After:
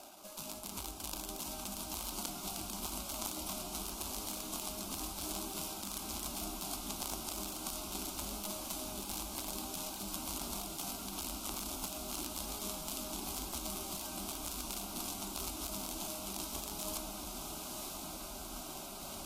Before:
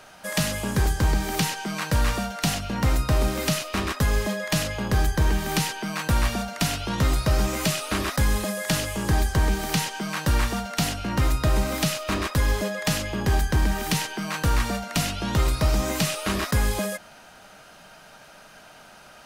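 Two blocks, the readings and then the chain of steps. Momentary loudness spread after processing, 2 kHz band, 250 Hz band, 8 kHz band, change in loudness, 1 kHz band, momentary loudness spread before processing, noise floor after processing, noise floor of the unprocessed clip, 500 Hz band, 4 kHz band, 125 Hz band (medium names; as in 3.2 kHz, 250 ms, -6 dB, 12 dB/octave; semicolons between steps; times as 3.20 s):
3 LU, -22.5 dB, -17.0 dB, -7.5 dB, -15.0 dB, -15.0 dB, 3 LU, -46 dBFS, -49 dBFS, -17.5 dB, -12.0 dB, -27.0 dB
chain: median filter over 41 samples; tilt EQ +4.5 dB/octave; reverse; compression 12:1, threshold -46 dBFS, peak gain reduction 21 dB; reverse; ever faster or slower copies 168 ms, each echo -4 st, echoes 3, each echo -6 dB; Chebyshev shaper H 6 -27 dB, 7 -13 dB, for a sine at -27.5 dBFS; static phaser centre 480 Hz, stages 6; on a send: echo that smears into a reverb 1033 ms, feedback 46%, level -4 dB; on the sum: trim +15 dB; AAC 48 kbps 32 kHz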